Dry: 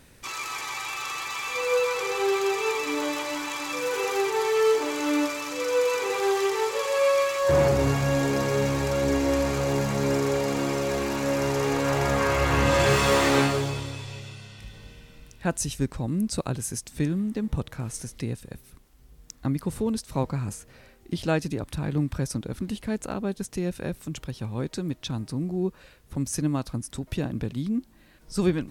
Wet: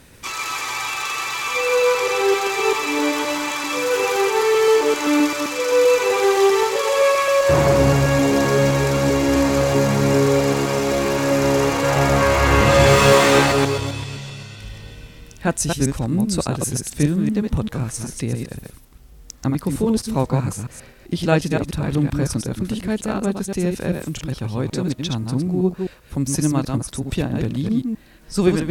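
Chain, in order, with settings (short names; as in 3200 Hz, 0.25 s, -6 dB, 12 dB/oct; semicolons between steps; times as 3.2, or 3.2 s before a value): reverse delay 0.13 s, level -4 dB; added harmonics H 4 -34 dB, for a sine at -7 dBFS; gain +6 dB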